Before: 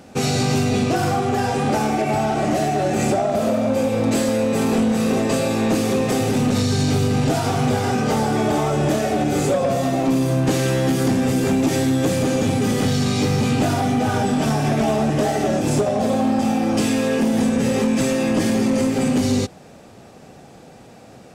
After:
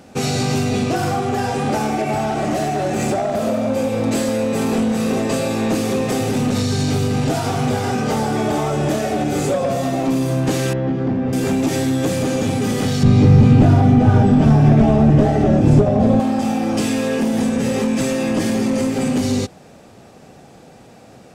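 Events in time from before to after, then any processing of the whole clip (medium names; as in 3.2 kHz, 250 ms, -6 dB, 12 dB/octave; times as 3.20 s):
2.13–3.41 s: hard clipper -15 dBFS
10.73–11.33 s: tape spacing loss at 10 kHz 43 dB
13.03–16.20 s: RIAA curve playback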